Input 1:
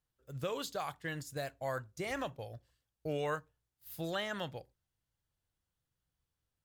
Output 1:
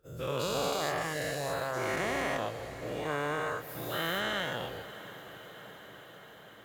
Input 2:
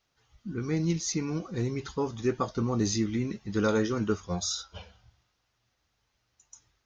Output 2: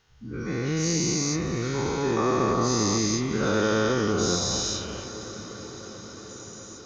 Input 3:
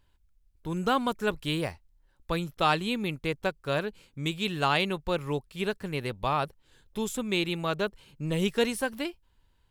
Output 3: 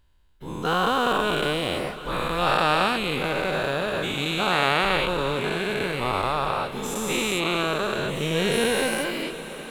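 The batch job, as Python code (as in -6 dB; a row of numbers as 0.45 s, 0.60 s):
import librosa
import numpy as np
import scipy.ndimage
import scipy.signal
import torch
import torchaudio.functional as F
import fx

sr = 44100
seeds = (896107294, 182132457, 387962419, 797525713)

y = fx.spec_dilate(x, sr, span_ms=480)
y = fx.echo_diffused(y, sr, ms=627, feedback_pct=72, wet_db=-14.5)
y = y * librosa.db_to_amplitude(-3.0)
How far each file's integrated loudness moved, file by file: +6.5 LU, +5.0 LU, +6.0 LU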